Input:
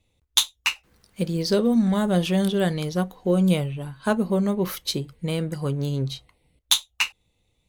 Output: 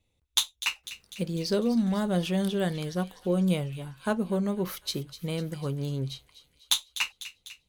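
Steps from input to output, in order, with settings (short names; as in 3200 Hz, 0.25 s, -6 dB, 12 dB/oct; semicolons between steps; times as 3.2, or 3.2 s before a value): thin delay 0.249 s, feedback 59%, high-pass 2200 Hz, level -12.5 dB; gain -5.5 dB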